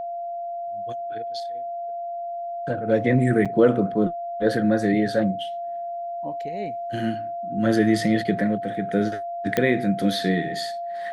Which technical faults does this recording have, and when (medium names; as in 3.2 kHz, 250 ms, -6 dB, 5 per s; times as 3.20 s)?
whine 690 Hz -28 dBFS
3.45–3.46 s: dropout 6.2 ms
9.57 s: pop -8 dBFS